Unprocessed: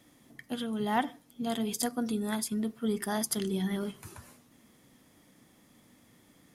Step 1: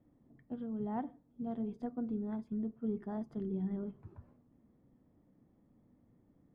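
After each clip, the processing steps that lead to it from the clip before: Bessel low-pass 560 Hz, order 2; low shelf 92 Hz +8.5 dB; gain -6 dB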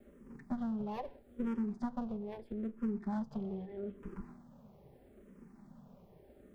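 minimum comb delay 5 ms; compressor, threshold -47 dBFS, peak gain reduction 14.5 dB; endless phaser -0.78 Hz; gain +14.5 dB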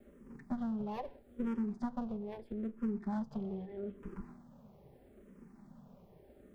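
nothing audible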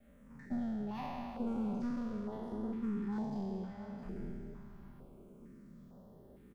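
spectral trails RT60 2.46 s; echo 0.663 s -12 dB; stepped notch 2.2 Hz 370–2400 Hz; gain -2.5 dB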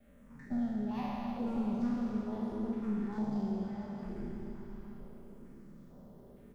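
reverb RT60 4.2 s, pre-delay 26 ms, DRR 4 dB; gain +1 dB

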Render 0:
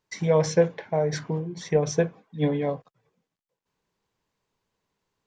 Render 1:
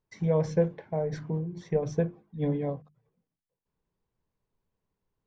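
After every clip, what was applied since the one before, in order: tilt -3 dB/oct; notches 50/100/150/200/250/300/350 Hz; gain -8.5 dB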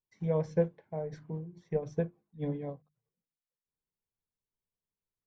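upward expander 1.5:1, over -46 dBFS; gain -2.5 dB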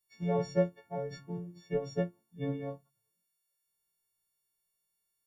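frequency quantiser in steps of 4 st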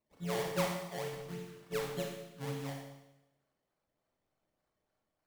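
flange 0.81 Hz, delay 5.2 ms, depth 4.6 ms, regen -73%; decimation with a swept rate 24×, swing 100% 3.4 Hz; Schroeder reverb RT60 0.94 s, combs from 28 ms, DRR 0.5 dB; gain -1.5 dB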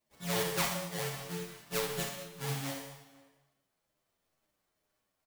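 spectral whitening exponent 0.6; outdoor echo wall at 85 m, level -22 dB; endless flanger 9 ms -2.1 Hz; gain +5.5 dB

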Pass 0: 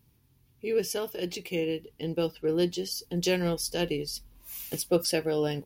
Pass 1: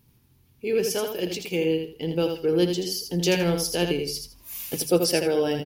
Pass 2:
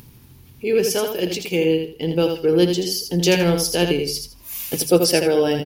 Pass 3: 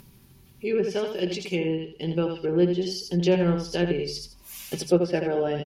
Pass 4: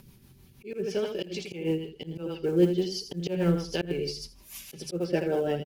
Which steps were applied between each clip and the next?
notches 50/100/150 Hz; feedback echo 81 ms, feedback 22%, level -6 dB; gain +4 dB
upward compressor, threshold -42 dBFS; gain +5.5 dB
treble ducked by the level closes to 1800 Hz, closed at -13.5 dBFS; comb 5.2 ms, depth 44%; gain -6 dB
auto swell 0.163 s; short-mantissa float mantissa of 4-bit; rotary speaker horn 6.3 Hz

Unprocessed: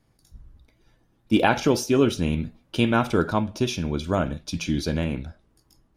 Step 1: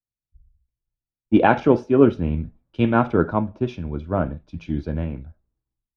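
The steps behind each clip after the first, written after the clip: LPF 1400 Hz 12 dB/oct; three-band expander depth 100%; gain +2 dB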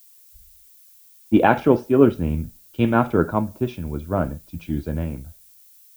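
added noise violet -51 dBFS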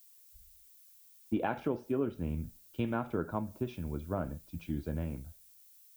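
compressor 4:1, threshold -21 dBFS, peak gain reduction 11.5 dB; gain -8.5 dB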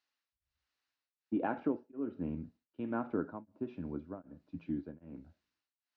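speaker cabinet 130–3400 Hz, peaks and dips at 130 Hz -6 dB, 280 Hz +8 dB, 2300 Hz -6 dB, 3300 Hz -10 dB; beating tremolo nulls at 1.3 Hz; gain -1.5 dB

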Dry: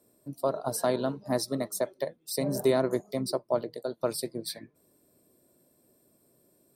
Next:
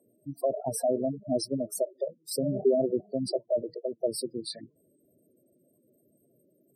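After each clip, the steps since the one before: spectral gate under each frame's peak -10 dB strong; gain +1.5 dB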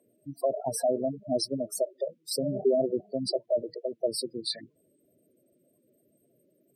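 bell 2400 Hz +13 dB 2.4 oct; gain -2.5 dB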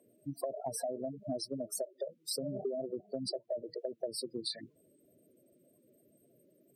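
compressor 10:1, threshold -35 dBFS, peak gain reduction 15.5 dB; gain +1 dB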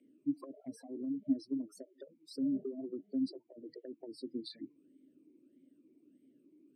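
vowel sweep i-u 1.6 Hz; gain +11 dB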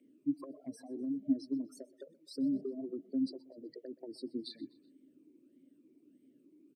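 feedback echo 0.125 s, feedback 49%, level -22 dB; gain +1 dB

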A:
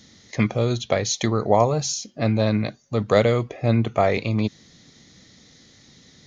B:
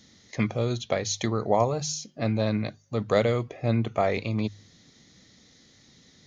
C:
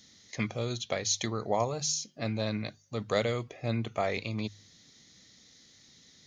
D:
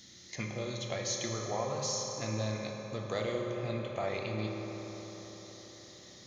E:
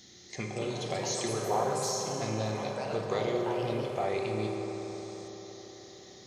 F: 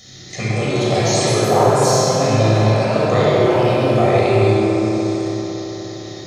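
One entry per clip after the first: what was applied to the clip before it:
de-hum 50.8 Hz, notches 3; gain -5 dB
high shelf 2100 Hz +9 dB; gain -7 dB
compressor 1.5:1, threshold -53 dBFS, peak gain reduction 11 dB; reverb RT60 5.1 s, pre-delay 3 ms, DRR -1 dB; gain +2.5 dB
small resonant body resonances 400/750 Hz, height 11 dB, ringing for 45 ms; echoes that change speed 0.303 s, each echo +4 st, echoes 3, each echo -6 dB
shoebox room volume 3700 m³, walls mixed, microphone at 6.3 m; gain +8 dB

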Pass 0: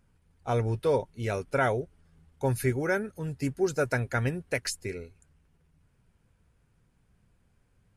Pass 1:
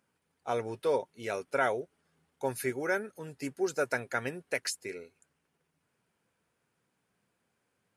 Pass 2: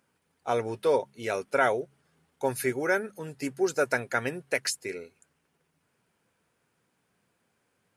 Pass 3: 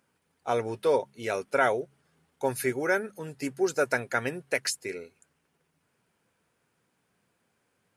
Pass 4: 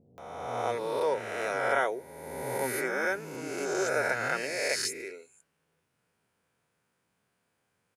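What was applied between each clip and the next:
Bessel high-pass 350 Hz, order 2; gain -1.5 dB
de-hum 68.29 Hz, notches 3; gain +4.5 dB
nothing audible
spectral swells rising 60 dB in 1.69 s; bands offset in time lows, highs 0.18 s, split 270 Hz; gain -6 dB

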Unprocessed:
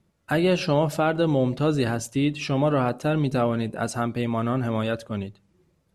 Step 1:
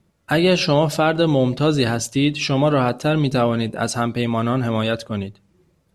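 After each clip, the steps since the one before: dynamic EQ 4400 Hz, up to +7 dB, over -48 dBFS, Q 1; gain +4.5 dB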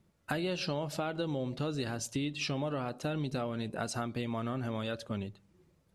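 compressor 6:1, threshold -25 dBFS, peak gain reduction 13 dB; gain -6.5 dB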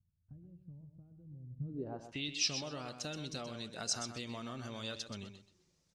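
pre-emphasis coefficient 0.8; low-pass sweep 100 Hz -> 5800 Hz, 1.55–2.33; on a send: feedback echo 0.127 s, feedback 18%, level -9 dB; on the sum: gain +4 dB

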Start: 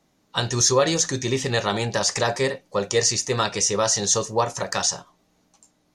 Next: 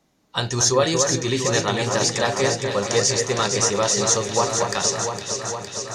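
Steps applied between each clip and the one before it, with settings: echo with dull and thin repeats by turns 0.23 s, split 2200 Hz, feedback 85%, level -5 dB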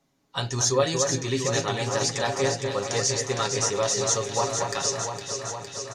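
comb 7.3 ms, depth 50%; gain -6 dB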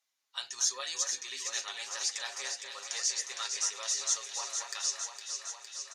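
Bessel high-pass 2200 Hz, order 2; gain -4.5 dB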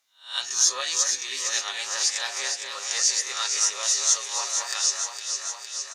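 spectral swells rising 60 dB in 0.36 s; gain +7.5 dB

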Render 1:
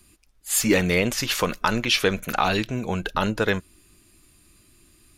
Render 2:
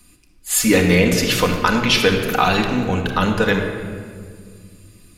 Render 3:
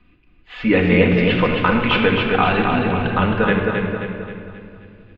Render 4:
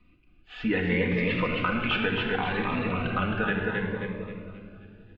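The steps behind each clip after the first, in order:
shoebox room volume 3300 m³, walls mixed, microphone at 1.9 m; gain +3 dB
steep low-pass 3100 Hz 36 dB/oct; on a send: feedback echo 0.266 s, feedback 47%, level -4.5 dB; on the sum: gain -1 dB
dynamic EQ 1800 Hz, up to +6 dB, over -31 dBFS, Q 0.86; compressor 2:1, threshold -20 dBFS, peak gain reduction 7 dB; cascading phaser rising 0.68 Hz; gain -5.5 dB

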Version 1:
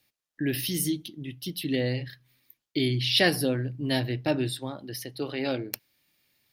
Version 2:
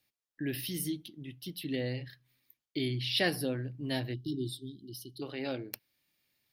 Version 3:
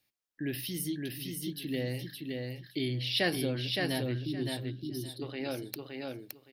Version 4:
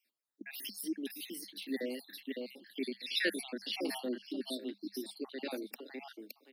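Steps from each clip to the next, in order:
spectral delete 4.14–5.22, 430–2900 Hz; dynamic EQ 6900 Hz, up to -6 dB, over -53 dBFS, Q 2.4; gain -7 dB
feedback echo 0.567 s, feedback 18%, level -3.5 dB
random spectral dropouts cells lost 51%; Chebyshev high-pass 200 Hz, order 8

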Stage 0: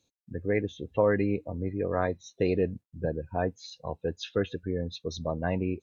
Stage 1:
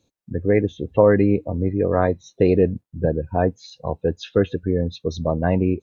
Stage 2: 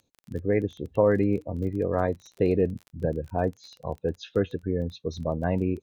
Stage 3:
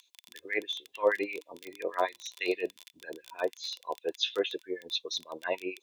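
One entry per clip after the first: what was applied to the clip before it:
tilt shelf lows +4.5 dB, about 1400 Hz; gain +6 dB
crackle 19/s -30 dBFS; gain -6.5 dB
LFO high-pass sine 6.3 Hz 600–2100 Hz; resonant high shelf 1900 Hz +13 dB, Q 1.5; small resonant body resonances 350/1000/3500 Hz, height 12 dB, ringing for 30 ms; gain -6 dB

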